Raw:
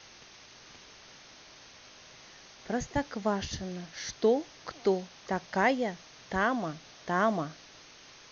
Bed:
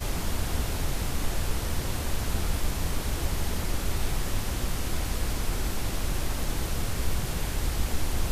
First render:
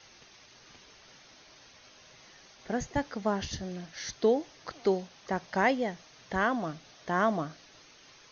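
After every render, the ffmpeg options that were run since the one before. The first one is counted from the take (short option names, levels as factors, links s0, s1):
-af "afftdn=nr=6:nf=-54"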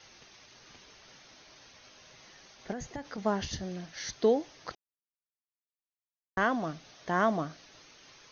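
-filter_complex "[0:a]asettb=1/sr,asplit=3[s0][s1][s2];[s0]atrim=end=2.724[s3];[s1]atrim=start=2.72:end=3.18,asetpts=PTS-STARTPTS,afade=t=in:d=0.004:c=qsin,afade=t=out:st=0.456:d=0.004:c=qsin,acompressor=threshold=0.02:ratio=12:attack=3.2:release=140:knee=1:detection=peak[s4];[s2]atrim=start=3.176[s5];[s3][s4]acrossfade=d=0.004:c1=hsin:c2=qsin[s6];[s6][s5]acrossfade=d=0.004:c1=qsin:c2=hsin,asplit=3[s7][s8][s9];[s7]atrim=end=4.75,asetpts=PTS-STARTPTS,afade=t=out:st=4.746:d=0.004:c=hsin[s10];[s8]atrim=start=4.75:end=6.37,asetpts=PTS-STARTPTS,volume=0[s11];[s9]atrim=start=6.37,asetpts=PTS-STARTPTS,afade=t=in:d=0.004:c=hsin[s12];[s10][s11][s12]concat=n=3:v=0:a=1"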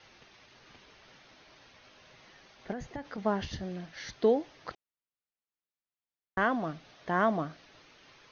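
-af "lowpass=3700"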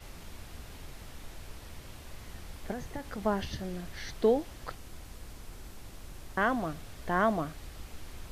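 -filter_complex "[1:a]volume=0.133[s0];[0:a][s0]amix=inputs=2:normalize=0"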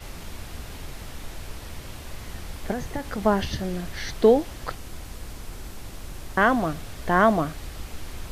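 -af "volume=2.66"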